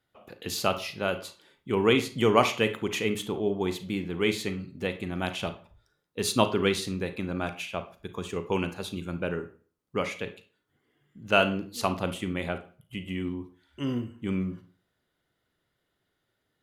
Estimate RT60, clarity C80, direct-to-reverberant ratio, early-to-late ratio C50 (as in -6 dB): 0.40 s, 18.5 dB, 9.0 dB, 12.0 dB